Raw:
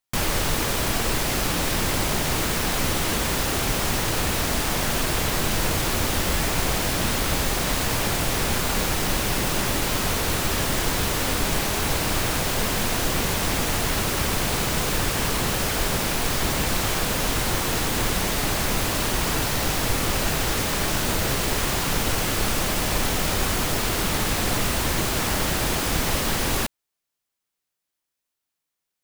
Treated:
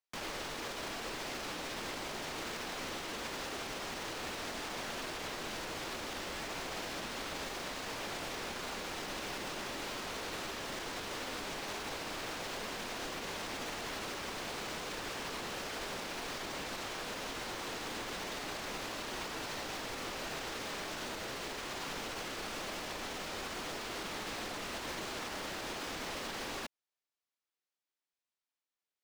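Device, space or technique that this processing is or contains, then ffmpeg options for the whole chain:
DJ mixer with the lows and highs turned down: -filter_complex "[0:a]acrossover=split=230 6700:gain=0.2 1 0.224[a][b][c];[a][b][c]amix=inputs=3:normalize=0,alimiter=limit=-23dB:level=0:latency=1:release=78,volume=-8.5dB"

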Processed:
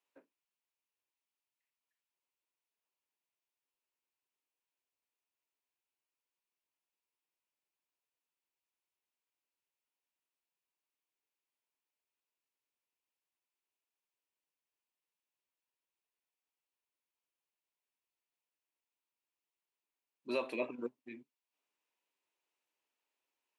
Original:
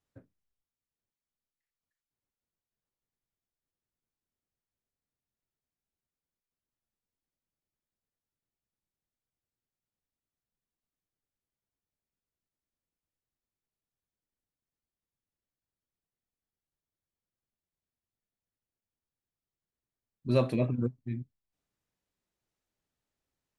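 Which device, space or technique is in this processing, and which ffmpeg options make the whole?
laptop speaker: -af "highpass=f=310:w=0.5412,highpass=f=310:w=1.3066,equalizer=f=960:t=o:w=0.29:g=9,equalizer=f=2.6k:t=o:w=0.58:g=10,alimiter=limit=-20.5dB:level=0:latency=1:release=265,volume=-3.5dB"

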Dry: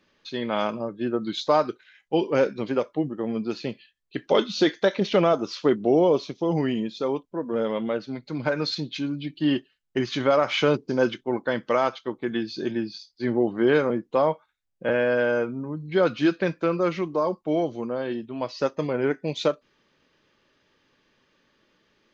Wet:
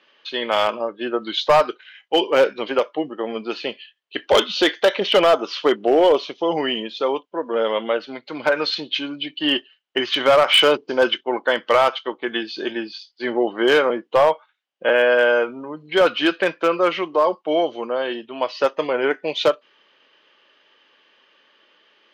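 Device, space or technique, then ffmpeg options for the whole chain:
megaphone: -af "highpass=510,lowpass=3.7k,equalizer=f=3k:t=o:w=0.23:g=10,asoftclip=type=hard:threshold=-17.5dB,volume=9dB"

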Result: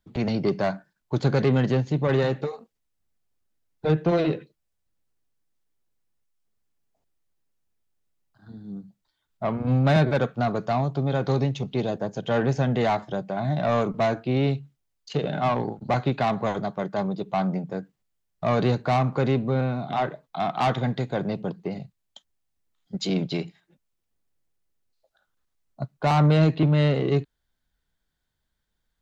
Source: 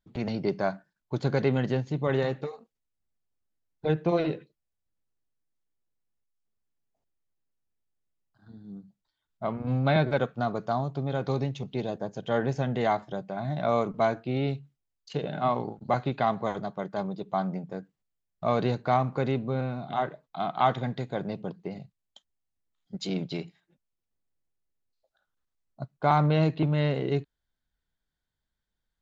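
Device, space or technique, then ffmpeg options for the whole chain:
one-band saturation: -filter_complex "[0:a]acrossover=split=230|4400[a][b][c];[b]asoftclip=type=tanh:threshold=-24dB[d];[a][d][c]amix=inputs=3:normalize=0,volume=6dB"

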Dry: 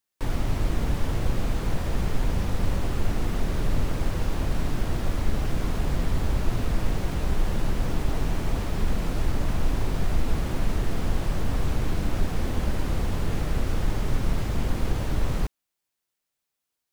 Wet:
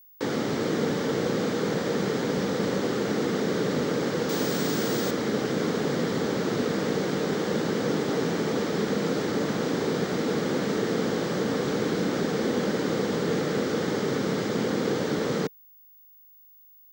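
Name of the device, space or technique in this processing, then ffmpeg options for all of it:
old television with a line whistle: -filter_complex "[0:a]highpass=f=180:w=0.5412,highpass=f=180:w=1.3066,equalizer=f=460:t=q:w=4:g=8,equalizer=f=680:t=q:w=4:g=-6,equalizer=f=990:t=q:w=4:g=-6,equalizer=f=2.6k:t=q:w=4:g=-8,lowpass=f=7.1k:w=0.5412,lowpass=f=7.1k:w=1.3066,aeval=exprs='val(0)+0.00126*sin(2*PI*15625*n/s)':c=same,asettb=1/sr,asplit=3[a][b][c];[a]atrim=end=4.294[d];[b]atrim=start=4.29:end=5.11,asetpts=PTS-STARTPTS,afade=t=in:d=0.004:c=qsin,afade=t=out:st=0.816:d=0.004:c=qsin,aemphasis=mode=production:type=50kf[e];[c]atrim=start=5.106[f];[d][e]acrossfade=d=0.004:c1=hsin:c2=qsin[g];[g][f]acrossfade=d=0.004:c1=qsin:c2=hsin,volume=7dB"

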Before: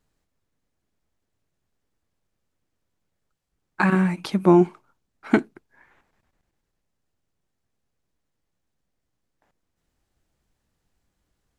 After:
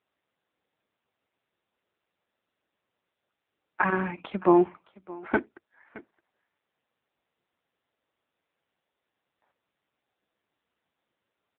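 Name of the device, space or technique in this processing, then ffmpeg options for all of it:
satellite phone: -af "highpass=360,lowpass=3.2k,aecho=1:1:618:0.0944" -ar 8000 -c:a libopencore_amrnb -b:a 6700

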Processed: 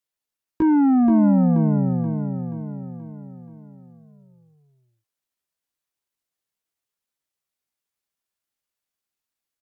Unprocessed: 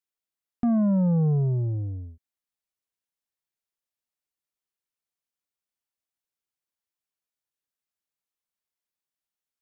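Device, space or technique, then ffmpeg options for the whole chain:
chipmunk voice: -af "asetrate=58866,aresample=44100,atempo=0.749154,aecho=1:1:479|958|1437|1916|2395|2874:0.501|0.246|0.12|0.059|0.0289|0.0142,volume=5dB"

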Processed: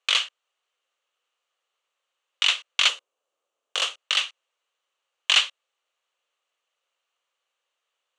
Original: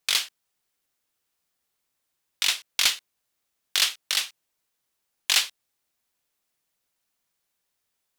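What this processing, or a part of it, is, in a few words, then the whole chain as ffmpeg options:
phone speaker on a table: -filter_complex "[0:a]asettb=1/sr,asplit=3[a][b][c];[a]atrim=end=2.884[d];[b]atrim=start=2.88:end=3.98,asetpts=PTS-STARTPTS,afade=t=in:d=0.004:c=qsin,afade=t=out:st=1.096:d=0.004:c=qsin,equalizer=f=125:t=o:w=1:g=11,equalizer=f=250:t=o:w=1:g=6,equalizer=f=500:t=o:w=1:g=5,equalizer=f=2k:t=o:w=1:g=-7,equalizer=f=4k:t=o:w=1:g=-5[e];[c]atrim=start=3.976[f];[d][e]acrossfade=d=0.004:c1=hsin:c2=qsin[g];[g][f]acrossfade=d=0.004:c1=qsin:c2=hsin,highpass=f=420:w=0.5412,highpass=f=420:w=1.3066,equalizer=f=530:t=q:w=4:g=7,equalizer=f=1.2k:t=q:w=4:g=8,equalizer=f=2.9k:t=q:w=4:g=9,equalizer=f=5.1k:t=q:w=4:g=-10,lowpass=f=7k:w=0.5412,lowpass=f=7k:w=1.3066"

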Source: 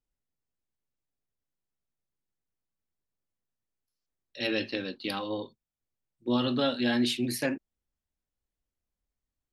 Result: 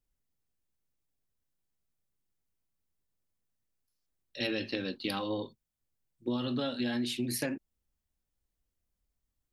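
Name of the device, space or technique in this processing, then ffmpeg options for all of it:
ASMR close-microphone chain: -af "lowshelf=f=220:g=5.5,acompressor=threshold=-29dB:ratio=10,highshelf=f=7k:g=5"

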